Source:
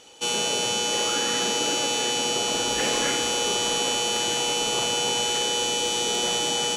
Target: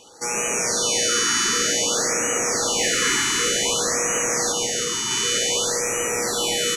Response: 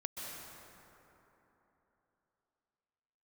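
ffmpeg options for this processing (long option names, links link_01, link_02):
-filter_complex "[0:a]asettb=1/sr,asplit=3[link_01][link_02][link_03];[link_01]atrim=end=4.524[link_04];[link_02]atrim=start=4.52:end=5.11,asetpts=PTS-STARTPTS,afade=type=in:duration=0.004:curve=qsin,afade=type=out:start_time=0.586:duration=0.004:curve=qsin,agate=range=-33dB:threshold=-20dB:ratio=3:detection=peak[link_05];[link_03]atrim=start=5.106[link_06];[link_04][link_05]acrossfade=duration=0.004:curve1=hsin:curve2=qsin[link_07];[link_07][link_06]acrossfade=duration=0.004:curve1=qsin:curve2=hsin,equalizer=frequency=1250:width_type=o:width=0.33:gain=4,equalizer=frequency=2000:width_type=o:width=0.33:gain=6,equalizer=frequency=3150:width_type=o:width=0.33:gain=-6,acrossover=split=860[link_08][link_09];[link_08]asoftclip=type=tanh:threshold=-32dB[link_10];[link_10][link_09]amix=inputs=2:normalize=0,aecho=1:1:140|322|558.6|866.2|1266:0.631|0.398|0.251|0.158|0.1,asplit=2[link_11][link_12];[1:a]atrim=start_sample=2205[link_13];[link_12][link_13]afir=irnorm=-1:irlink=0,volume=-0.5dB[link_14];[link_11][link_14]amix=inputs=2:normalize=0,afftfilt=real='re*(1-between(b*sr/1024,590*pow(4200/590,0.5+0.5*sin(2*PI*0.54*pts/sr))/1.41,590*pow(4200/590,0.5+0.5*sin(2*PI*0.54*pts/sr))*1.41))':imag='im*(1-between(b*sr/1024,590*pow(4200/590,0.5+0.5*sin(2*PI*0.54*pts/sr))/1.41,590*pow(4200/590,0.5+0.5*sin(2*PI*0.54*pts/sr))*1.41))':win_size=1024:overlap=0.75,volume=-1dB"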